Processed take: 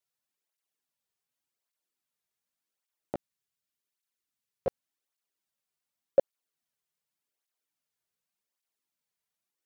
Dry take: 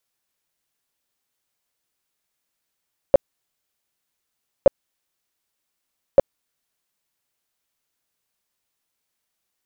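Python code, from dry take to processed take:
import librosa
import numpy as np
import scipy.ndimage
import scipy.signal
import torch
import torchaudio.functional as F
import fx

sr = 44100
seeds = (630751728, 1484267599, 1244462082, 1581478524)

y = fx.peak_eq(x, sr, hz=720.0, db=-7.0, octaves=1.4, at=(3.15, 4.67))
y = fx.flanger_cancel(y, sr, hz=0.87, depth_ms=3.9)
y = y * 10.0 ** (-7.0 / 20.0)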